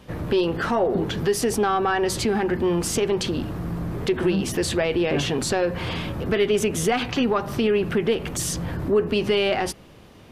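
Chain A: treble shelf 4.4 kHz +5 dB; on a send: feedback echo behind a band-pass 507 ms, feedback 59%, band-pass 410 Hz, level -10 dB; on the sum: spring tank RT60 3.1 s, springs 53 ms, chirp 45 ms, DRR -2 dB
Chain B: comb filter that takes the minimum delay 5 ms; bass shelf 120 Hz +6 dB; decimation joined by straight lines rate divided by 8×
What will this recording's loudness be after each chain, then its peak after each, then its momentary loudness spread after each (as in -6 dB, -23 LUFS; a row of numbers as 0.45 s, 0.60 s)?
-18.5 LUFS, -24.5 LUFS; -4.5 dBFS, -10.0 dBFS; 3 LU, 7 LU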